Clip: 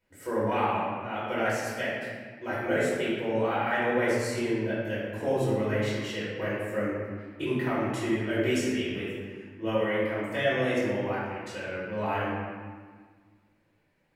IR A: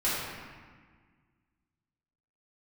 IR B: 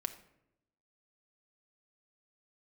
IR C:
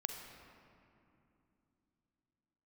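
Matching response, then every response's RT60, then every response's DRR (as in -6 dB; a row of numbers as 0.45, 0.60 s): A; 1.6, 0.85, 2.8 s; -10.5, 7.0, 4.5 dB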